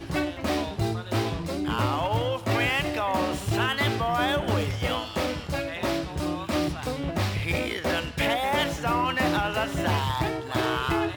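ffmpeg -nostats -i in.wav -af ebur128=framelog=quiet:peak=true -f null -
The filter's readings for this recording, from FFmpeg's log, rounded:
Integrated loudness:
  I:         -26.7 LUFS
  Threshold: -36.7 LUFS
Loudness range:
  LRA:         2.8 LU
  Threshold: -46.6 LUFS
  LRA low:   -28.5 LUFS
  LRA high:  -25.6 LUFS
True peak:
  Peak:      -12.3 dBFS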